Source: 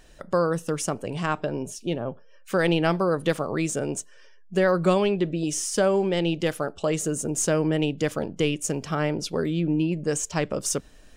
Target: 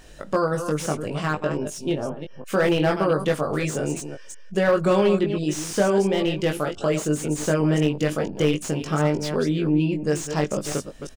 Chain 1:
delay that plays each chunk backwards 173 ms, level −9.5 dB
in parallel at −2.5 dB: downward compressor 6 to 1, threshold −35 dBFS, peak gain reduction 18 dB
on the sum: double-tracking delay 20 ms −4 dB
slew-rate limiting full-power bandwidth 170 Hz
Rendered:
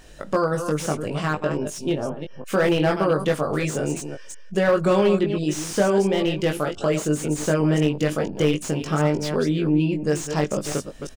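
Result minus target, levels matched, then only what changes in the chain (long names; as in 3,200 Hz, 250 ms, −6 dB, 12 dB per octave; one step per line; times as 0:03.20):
downward compressor: peak gain reduction −7.5 dB
change: downward compressor 6 to 1, threshold −44 dBFS, peak gain reduction 25.5 dB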